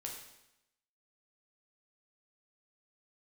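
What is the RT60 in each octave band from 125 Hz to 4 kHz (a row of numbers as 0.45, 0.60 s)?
0.90, 0.90, 0.85, 0.90, 0.85, 0.85 s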